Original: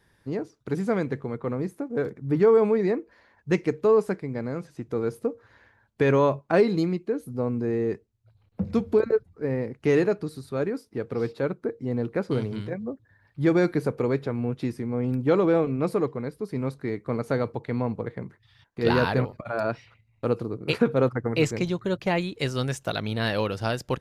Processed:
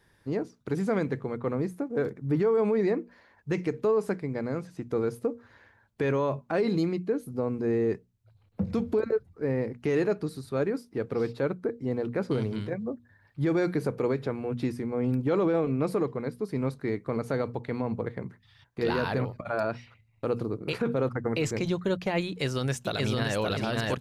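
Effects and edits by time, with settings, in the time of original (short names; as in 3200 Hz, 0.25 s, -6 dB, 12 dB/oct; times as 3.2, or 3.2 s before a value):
22.28–23.37 echo throw 0.57 s, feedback 35%, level -0.5 dB
whole clip: notches 60/120/180/240 Hz; limiter -18 dBFS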